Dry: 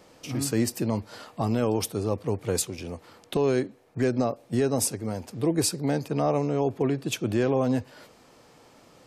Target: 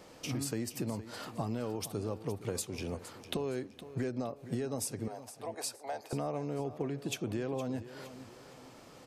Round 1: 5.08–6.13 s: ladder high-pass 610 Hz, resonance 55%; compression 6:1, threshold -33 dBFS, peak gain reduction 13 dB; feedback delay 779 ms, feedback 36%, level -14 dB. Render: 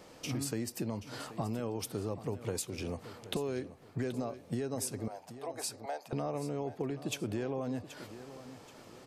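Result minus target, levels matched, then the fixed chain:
echo 314 ms late
5.08–6.13 s: ladder high-pass 610 Hz, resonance 55%; compression 6:1, threshold -33 dBFS, peak gain reduction 13 dB; feedback delay 465 ms, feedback 36%, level -14 dB

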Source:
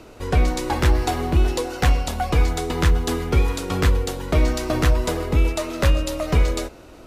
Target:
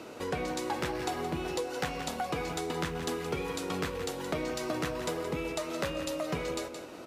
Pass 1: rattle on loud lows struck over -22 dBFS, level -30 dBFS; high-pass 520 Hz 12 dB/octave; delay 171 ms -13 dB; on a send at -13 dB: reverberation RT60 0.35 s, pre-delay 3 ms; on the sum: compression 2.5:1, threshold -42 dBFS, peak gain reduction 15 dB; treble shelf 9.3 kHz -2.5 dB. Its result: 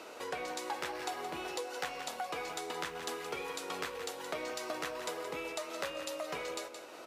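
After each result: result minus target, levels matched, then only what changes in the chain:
250 Hz band -6.5 dB; compression: peak gain reduction +3 dB
change: high-pass 180 Hz 12 dB/octave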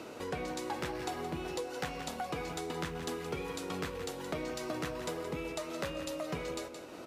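compression: peak gain reduction +4 dB
change: compression 2.5:1, threshold -35 dBFS, peak gain reduction 12 dB

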